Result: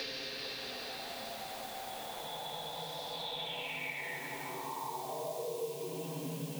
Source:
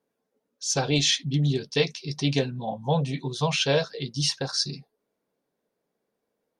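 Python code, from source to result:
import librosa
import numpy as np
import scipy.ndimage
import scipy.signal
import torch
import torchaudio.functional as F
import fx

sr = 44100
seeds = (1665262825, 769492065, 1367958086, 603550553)

p1 = fx.vibrato(x, sr, rate_hz=1.8, depth_cents=8.9)
p2 = fx.paulstretch(p1, sr, seeds[0], factor=5.7, window_s=0.5, from_s=2.42)
p3 = scipy.signal.sosfilt(scipy.signal.butter(4, 130.0, 'highpass', fs=sr, output='sos'), p2)
p4 = p3 + fx.echo_diffused(p3, sr, ms=451, feedback_pct=48, wet_db=-7, dry=0)
p5 = fx.filter_sweep_bandpass(p4, sr, from_hz=4900.0, to_hz=220.0, start_s=3.04, end_s=6.44, q=5.5)
p6 = fx.quant_dither(p5, sr, seeds[1], bits=8, dither='triangular')
p7 = p5 + (p6 * librosa.db_to_amplitude(-9.0))
p8 = fx.band_squash(p7, sr, depth_pct=100)
y = p8 * librosa.db_to_amplitude(1.0)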